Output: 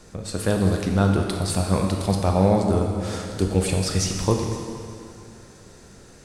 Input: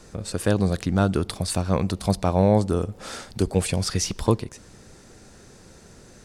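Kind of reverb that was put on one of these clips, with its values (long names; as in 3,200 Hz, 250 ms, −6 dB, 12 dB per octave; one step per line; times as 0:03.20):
dense smooth reverb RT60 2.4 s, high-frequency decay 0.9×, DRR 1.5 dB
level −1 dB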